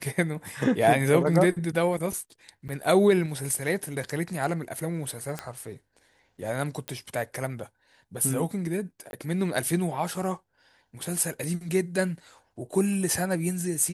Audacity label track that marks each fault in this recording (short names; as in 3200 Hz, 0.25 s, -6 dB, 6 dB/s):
2.680000	2.690000	gap 8.9 ms
5.390000	5.390000	pop -16 dBFS
6.880000	6.880000	pop -17 dBFS
9.110000	9.130000	gap 21 ms